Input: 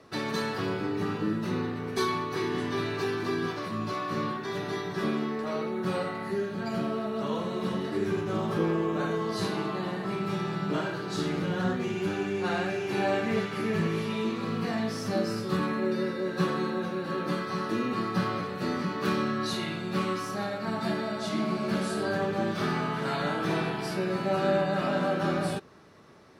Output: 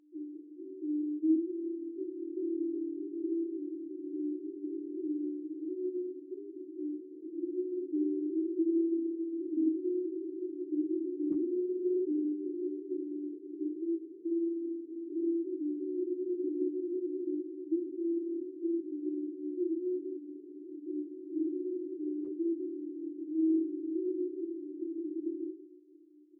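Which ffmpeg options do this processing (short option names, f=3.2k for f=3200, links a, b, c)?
-filter_complex "[0:a]afftfilt=real='re*gte(hypot(re,im),0.01)':imag='im*gte(hypot(re,im),0.01)':win_size=1024:overlap=0.75,afftdn=nr=17:nf=-40,dynaudnorm=f=180:g=17:m=8.5dB,asoftclip=type=hard:threshold=-20.5dB,aeval=exprs='val(0)+0.00501*(sin(2*PI*60*n/s)+sin(2*PI*2*60*n/s)/2+sin(2*PI*3*60*n/s)/3+sin(2*PI*4*60*n/s)/4+sin(2*PI*5*60*n/s)/5)':c=same,asuperpass=centerf=330:order=8:qfactor=5.3,asplit=2[a][b];[b]adelay=47,volume=-5.5dB[c];[a][c]amix=inputs=2:normalize=0,asplit=2[d][e];[e]adelay=1516,volume=-23dB,highshelf=f=4k:g=-34.1[f];[d][f]amix=inputs=2:normalize=0" -ar 48000 -c:a aac -b:a 24k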